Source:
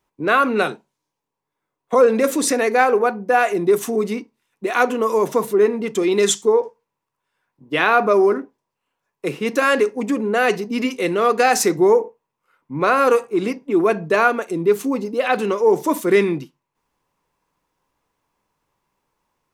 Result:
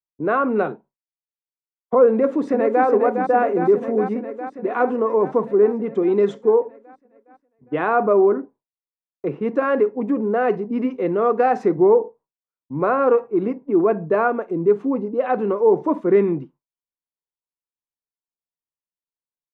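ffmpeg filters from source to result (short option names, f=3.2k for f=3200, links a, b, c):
-filter_complex "[0:a]asplit=2[a][b];[b]afade=t=in:st=2.12:d=0.01,afade=t=out:st=2.85:d=0.01,aecho=0:1:410|820|1230|1640|2050|2460|2870|3280|3690|4100|4510|4920:0.501187|0.37589|0.281918|0.211438|0.158579|0.118934|0.0892006|0.0669004|0.0501753|0.0376315|0.0282236|0.0211677[c];[a][c]amix=inputs=2:normalize=0,agate=range=-33dB:threshold=-40dB:ratio=3:detection=peak,lowpass=1k"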